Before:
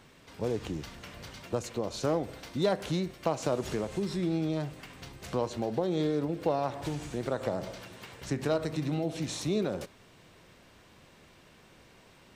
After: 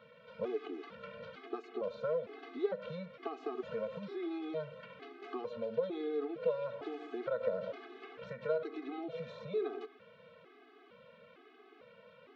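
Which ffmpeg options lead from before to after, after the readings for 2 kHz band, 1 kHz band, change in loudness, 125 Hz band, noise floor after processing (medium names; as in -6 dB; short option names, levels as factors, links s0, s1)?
-6.5 dB, -9.0 dB, -7.0 dB, -18.0 dB, -61 dBFS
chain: -filter_complex "[0:a]acrossover=split=590|1500[s0][s1][s2];[s0]acompressor=threshold=0.0126:ratio=4[s3];[s1]acompressor=threshold=0.00794:ratio=4[s4];[s2]acompressor=threshold=0.00398:ratio=4[s5];[s3][s4][s5]amix=inputs=3:normalize=0,highpass=280,equalizer=f=300:t=q:w=4:g=-4,equalizer=f=460:t=q:w=4:g=8,equalizer=f=890:t=q:w=4:g=-9,equalizer=f=1300:t=q:w=4:g=4,equalizer=f=1800:t=q:w=4:g=-6,equalizer=f=2700:t=q:w=4:g=-4,lowpass=f=3000:w=0.5412,lowpass=f=3000:w=1.3066,afftfilt=real='re*gt(sin(2*PI*1.1*pts/sr)*(1-2*mod(floor(b*sr/1024/220),2)),0)':imag='im*gt(sin(2*PI*1.1*pts/sr)*(1-2*mod(floor(b*sr/1024/220),2)),0)':win_size=1024:overlap=0.75,volume=1.5"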